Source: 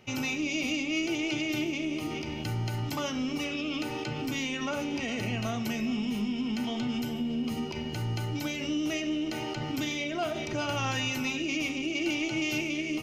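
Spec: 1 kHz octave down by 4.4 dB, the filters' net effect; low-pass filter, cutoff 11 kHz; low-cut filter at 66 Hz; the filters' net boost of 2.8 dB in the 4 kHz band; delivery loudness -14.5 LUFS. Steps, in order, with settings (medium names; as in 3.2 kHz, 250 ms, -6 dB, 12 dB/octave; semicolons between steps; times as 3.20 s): high-pass 66 Hz; low-pass 11 kHz; peaking EQ 1 kHz -6.5 dB; peaking EQ 4 kHz +5 dB; trim +16.5 dB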